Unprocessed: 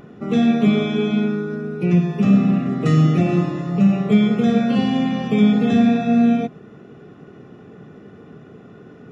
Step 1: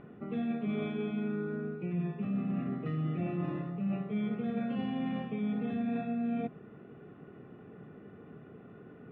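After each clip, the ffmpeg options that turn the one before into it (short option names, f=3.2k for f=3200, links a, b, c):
-af "lowpass=f=2.9k:w=0.5412,lowpass=f=2.9k:w=1.3066,areverse,acompressor=threshold=-22dB:ratio=6,areverse,volume=-9dB"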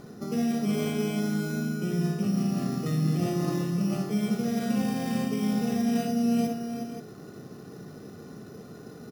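-filter_complex "[0:a]acrusher=samples=8:mix=1:aa=0.000001,asplit=2[a][b];[b]aecho=0:1:59|367|530:0.473|0.398|0.299[c];[a][c]amix=inputs=2:normalize=0,volume=5.5dB"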